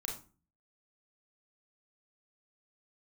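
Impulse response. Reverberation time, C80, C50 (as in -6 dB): 0.35 s, 12.5 dB, 6.5 dB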